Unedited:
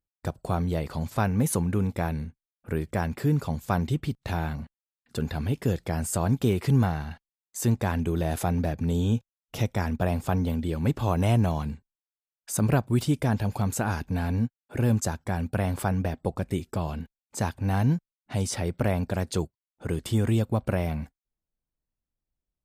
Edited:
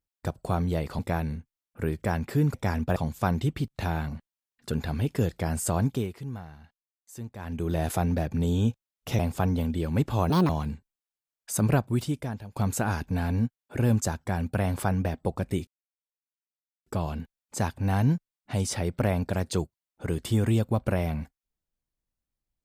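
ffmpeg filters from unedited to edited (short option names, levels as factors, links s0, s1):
-filter_complex "[0:a]asplit=11[s0][s1][s2][s3][s4][s5][s6][s7][s8][s9][s10];[s0]atrim=end=0.992[s11];[s1]atrim=start=1.878:end=3.432[s12];[s2]atrim=start=9.658:end=10.082[s13];[s3]atrim=start=3.428:end=6.64,asetpts=PTS-STARTPTS,afade=t=out:st=2.822:d=0.39:silence=0.177828[s14];[s4]atrim=start=6.64:end=7.85,asetpts=PTS-STARTPTS,volume=0.178[s15];[s5]atrim=start=7.85:end=9.662,asetpts=PTS-STARTPTS,afade=t=in:d=0.39:silence=0.177828[s16];[s6]atrim=start=10.078:end=11.194[s17];[s7]atrim=start=11.19:end=11.49,asetpts=PTS-STARTPTS,asetrate=68796,aresample=44100[s18];[s8]atrim=start=11.486:end=13.56,asetpts=PTS-STARTPTS,afade=t=out:st=1.234:d=0.84:silence=0.0707946[s19];[s9]atrim=start=13.56:end=16.67,asetpts=PTS-STARTPTS,afade=t=in:d=0.004:c=hsin:silence=0.0707946,afade=t=out:st=3.106:d=0.004:c=hsin,apad=pad_dur=1.19[s20];[s10]atrim=start=16.67,asetpts=PTS-STARTPTS,afade=t=in:d=0.004:c=hsin[s21];[s11][s12]acrossfade=d=0.004:c1=hsin:c2=hsin[s22];[s22][s13]acrossfade=d=0.004:c1=hsin:c2=hsin[s23];[s14][s15][s16]concat=n=3:v=0:a=1[s24];[s23][s24]acrossfade=d=0.004:c1=hsin:c2=hsin[s25];[s25][s17]acrossfade=d=0.004:c1=hsin:c2=hsin[s26];[s26][s18]acrossfade=d=0.004:c1=hsin:c2=hsin[s27];[s19][s20][s21]concat=n=3:v=0:a=1[s28];[s27][s28]acrossfade=d=0.004:c1=hsin:c2=hsin"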